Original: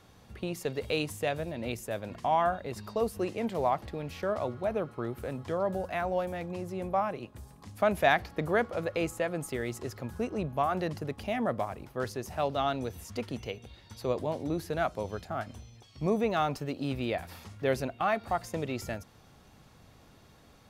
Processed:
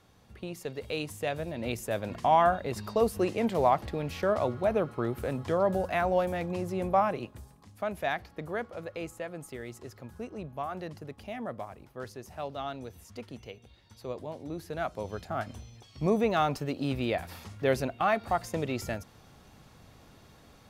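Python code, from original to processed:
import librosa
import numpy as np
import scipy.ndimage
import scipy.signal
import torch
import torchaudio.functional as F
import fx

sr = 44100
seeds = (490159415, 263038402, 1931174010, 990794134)

y = fx.gain(x, sr, db=fx.line((0.87, -4.0), (2.01, 4.0), (7.21, 4.0), (7.68, -7.0), (14.41, -7.0), (15.41, 2.0)))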